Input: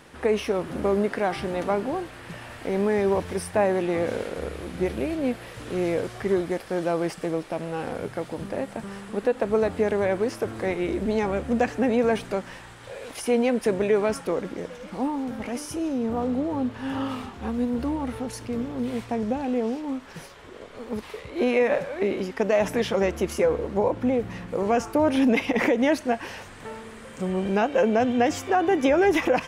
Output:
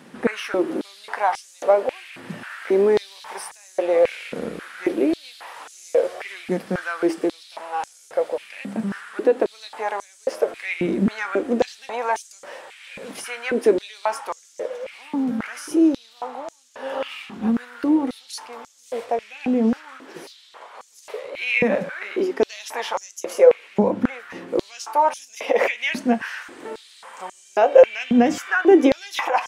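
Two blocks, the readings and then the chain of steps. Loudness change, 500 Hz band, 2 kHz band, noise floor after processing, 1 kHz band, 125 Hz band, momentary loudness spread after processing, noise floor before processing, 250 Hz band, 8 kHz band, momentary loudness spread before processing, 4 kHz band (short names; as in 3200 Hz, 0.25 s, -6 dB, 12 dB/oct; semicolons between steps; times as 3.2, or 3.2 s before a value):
+3.0 dB, +3.0 dB, +4.0 dB, -50 dBFS, +3.0 dB, -3.0 dB, 18 LU, -44 dBFS, +2.0 dB, +2.5 dB, 13 LU, +3.5 dB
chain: flange 0.49 Hz, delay 7.5 ms, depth 3.2 ms, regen -71%; stepped high-pass 3.7 Hz 200–6500 Hz; gain +5 dB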